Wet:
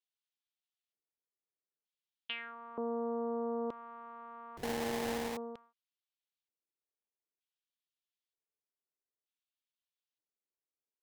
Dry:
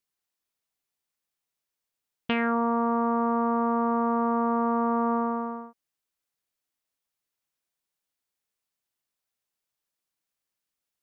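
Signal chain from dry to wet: LFO band-pass square 0.54 Hz 410–3300 Hz; 4.57–5.37 s: sample-rate reducer 1.3 kHz, jitter 20%; trim -3.5 dB

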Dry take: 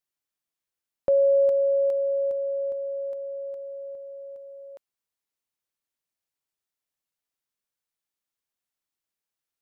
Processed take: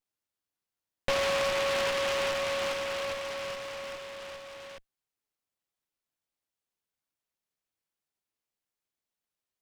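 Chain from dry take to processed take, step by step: comb filter that takes the minimum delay 9.5 ms; compression, threshold -25 dBFS, peak gain reduction 6.5 dB; delay time shaken by noise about 1.8 kHz, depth 0.17 ms

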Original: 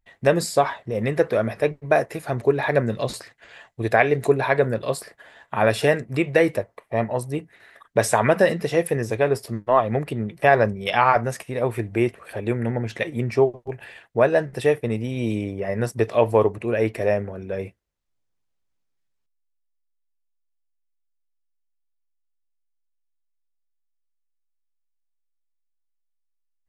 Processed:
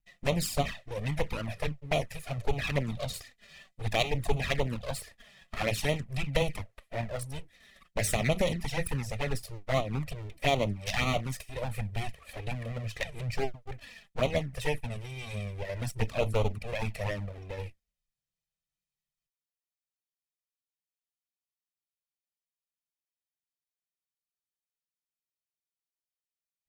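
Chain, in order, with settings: comb filter that takes the minimum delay 1.6 ms; high-order bell 720 Hz -8.5 dB 2.7 oct; touch-sensitive flanger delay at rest 6.2 ms, full sweep at -21.5 dBFS

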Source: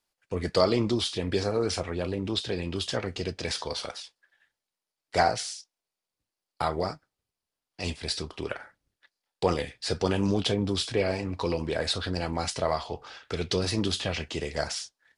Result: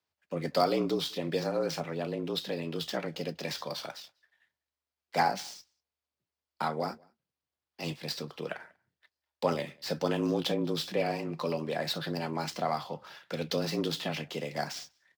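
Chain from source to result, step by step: median filter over 5 samples; frequency shift +72 Hz; echo from a far wall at 33 m, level -29 dB; trim -3.5 dB

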